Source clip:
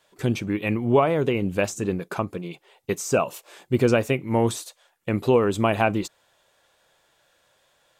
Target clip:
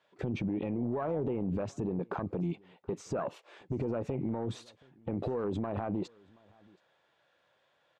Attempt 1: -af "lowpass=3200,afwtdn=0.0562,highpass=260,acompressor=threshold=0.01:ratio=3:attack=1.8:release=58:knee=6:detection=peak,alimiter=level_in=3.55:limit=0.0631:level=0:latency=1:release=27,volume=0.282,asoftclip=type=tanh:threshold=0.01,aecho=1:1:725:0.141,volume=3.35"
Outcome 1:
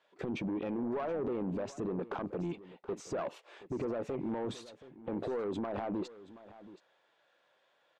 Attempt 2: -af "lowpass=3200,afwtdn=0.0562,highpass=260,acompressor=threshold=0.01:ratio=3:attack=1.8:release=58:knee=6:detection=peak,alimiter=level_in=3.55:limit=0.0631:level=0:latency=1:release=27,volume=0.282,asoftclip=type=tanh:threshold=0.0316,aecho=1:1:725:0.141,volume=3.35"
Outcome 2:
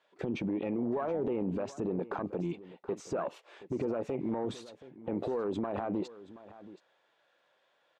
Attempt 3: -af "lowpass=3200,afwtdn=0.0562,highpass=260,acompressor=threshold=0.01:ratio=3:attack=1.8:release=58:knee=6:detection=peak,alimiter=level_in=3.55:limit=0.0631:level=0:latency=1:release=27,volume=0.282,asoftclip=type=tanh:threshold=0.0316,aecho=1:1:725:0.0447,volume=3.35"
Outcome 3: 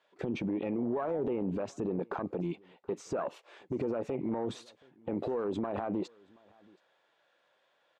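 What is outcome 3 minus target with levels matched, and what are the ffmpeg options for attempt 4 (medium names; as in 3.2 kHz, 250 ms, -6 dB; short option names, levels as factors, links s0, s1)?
125 Hz band -5.5 dB
-af "lowpass=3200,afwtdn=0.0562,highpass=110,acompressor=threshold=0.01:ratio=3:attack=1.8:release=58:knee=6:detection=peak,alimiter=level_in=3.55:limit=0.0631:level=0:latency=1:release=27,volume=0.282,asoftclip=type=tanh:threshold=0.0316,aecho=1:1:725:0.0447,volume=3.35"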